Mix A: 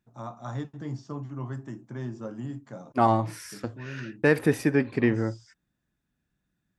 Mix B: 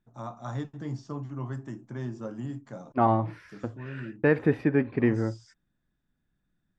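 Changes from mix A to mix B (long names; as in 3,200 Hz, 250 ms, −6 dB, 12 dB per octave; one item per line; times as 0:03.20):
second voice: add high-frequency loss of the air 400 metres
master: remove high-pass filter 43 Hz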